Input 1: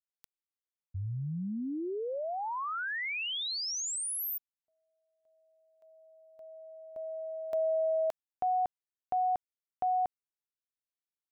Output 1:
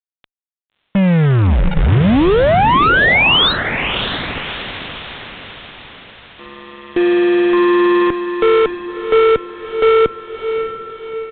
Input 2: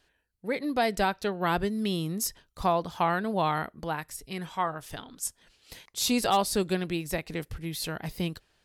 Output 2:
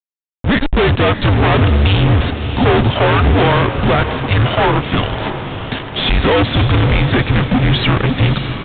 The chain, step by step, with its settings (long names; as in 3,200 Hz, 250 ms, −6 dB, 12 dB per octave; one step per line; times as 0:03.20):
automatic gain control gain up to 7 dB
in parallel at −11.5 dB: decimation without filtering 31×
on the sum: frequency shifter −290 Hz
fuzz pedal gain 37 dB, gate −39 dBFS
on a send: feedback delay with all-pass diffusion 619 ms, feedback 52%, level −9 dB
on the sum: downsampling to 8,000 Hz
level +3 dB